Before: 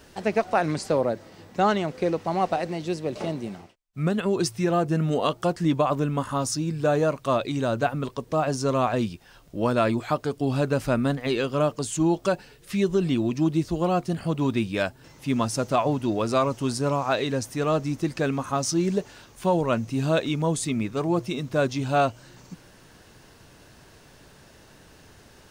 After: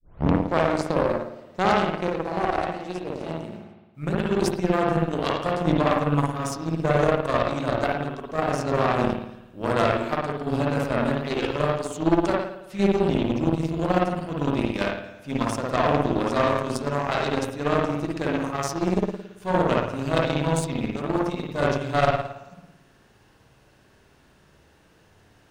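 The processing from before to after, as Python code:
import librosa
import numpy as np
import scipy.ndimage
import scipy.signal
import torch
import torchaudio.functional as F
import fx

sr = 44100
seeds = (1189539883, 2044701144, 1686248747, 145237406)

y = fx.tape_start_head(x, sr, length_s=0.67)
y = fx.rev_spring(y, sr, rt60_s=1.1, pass_ms=(55,), chirp_ms=65, drr_db=-4.0)
y = fx.cheby_harmonics(y, sr, harmonics=(6, 7, 8), levels_db=(-13, -22, -20), full_scale_db=-4.0)
y = y * librosa.db_to_amplitude(-3.5)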